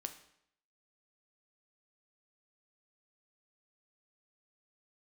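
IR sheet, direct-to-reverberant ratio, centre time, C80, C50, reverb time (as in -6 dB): 7.0 dB, 10 ms, 14.5 dB, 11.5 dB, 0.70 s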